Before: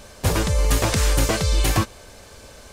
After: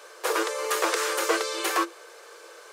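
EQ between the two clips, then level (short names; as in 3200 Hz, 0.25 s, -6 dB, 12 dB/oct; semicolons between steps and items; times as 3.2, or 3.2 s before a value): rippled Chebyshev high-pass 330 Hz, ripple 9 dB; +4.0 dB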